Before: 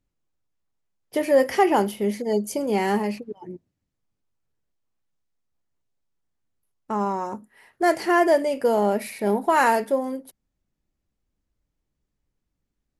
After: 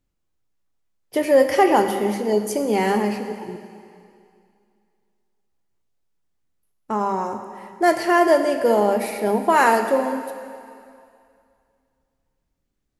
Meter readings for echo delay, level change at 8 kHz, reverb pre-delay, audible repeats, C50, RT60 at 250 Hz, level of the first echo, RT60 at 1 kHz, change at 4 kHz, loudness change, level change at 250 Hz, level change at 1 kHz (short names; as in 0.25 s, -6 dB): none, +3.5 dB, 10 ms, none, 8.0 dB, 2.2 s, none, 2.4 s, +3.5 dB, +2.5 dB, +2.5 dB, +3.5 dB